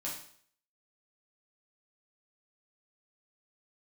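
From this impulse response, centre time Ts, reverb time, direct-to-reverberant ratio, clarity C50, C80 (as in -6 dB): 36 ms, 0.55 s, -6.0 dB, 4.5 dB, 8.5 dB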